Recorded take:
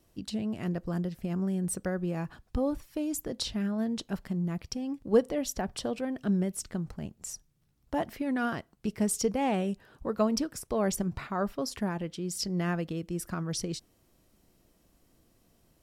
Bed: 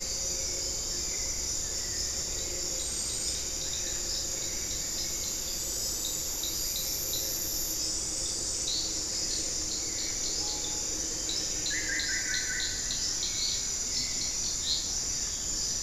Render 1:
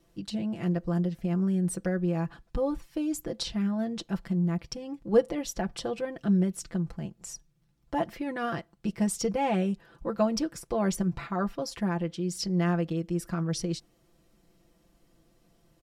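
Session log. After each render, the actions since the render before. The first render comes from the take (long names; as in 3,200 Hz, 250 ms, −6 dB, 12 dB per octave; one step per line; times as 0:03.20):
high-shelf EQ 9,200 Hz −10 dB
comb filter 5.9 ms, depth 69%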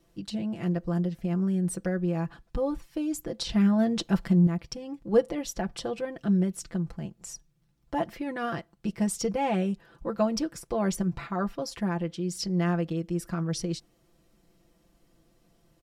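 0:03.49–0:04.47: clip gain +6.5 dB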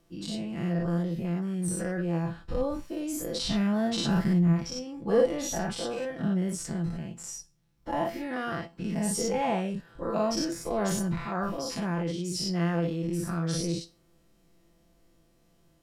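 every bin's largest magnitude spread in time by 120 ms
tuned comb filter 84 Hz, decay 0.29 s, harmonics all, mix 60%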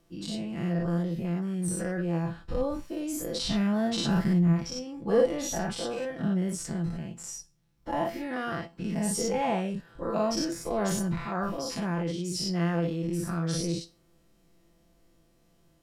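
no processing that can be heard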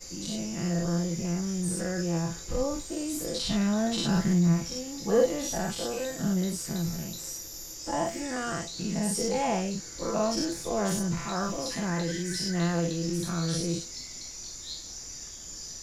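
mix in bed −9.5 dB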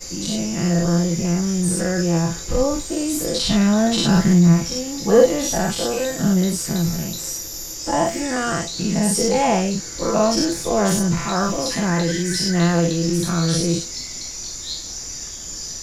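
level +10 dB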